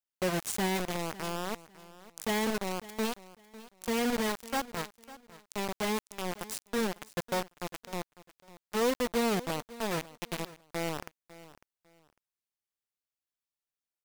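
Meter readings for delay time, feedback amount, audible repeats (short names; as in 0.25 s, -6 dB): 0.551 s, 24%, 2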